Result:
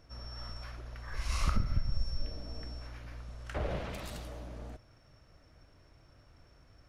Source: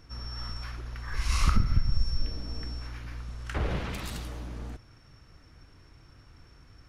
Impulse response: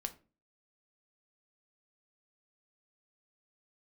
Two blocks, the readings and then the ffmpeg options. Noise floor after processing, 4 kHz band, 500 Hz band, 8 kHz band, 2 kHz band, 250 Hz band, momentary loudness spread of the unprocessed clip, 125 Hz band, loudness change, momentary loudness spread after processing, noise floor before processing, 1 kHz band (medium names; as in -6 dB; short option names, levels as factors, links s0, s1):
-62 dBFS, -6.5 dB, -0.5 dB, -6.5 dB, -6.0 dB, -6.0 dB, 13 LU, -6.5 dB, -6.0 dB, 13 LU, -56 dBFS, -5.0 dB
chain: -af "equalizer=f=610:t=o:w=0.57:g=10,volume=0.473"